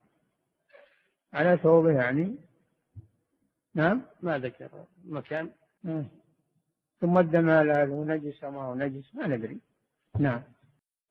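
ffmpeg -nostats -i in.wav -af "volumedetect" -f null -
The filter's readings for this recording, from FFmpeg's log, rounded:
mean_volume: -28.9 dB
max_volume: -8.0 dB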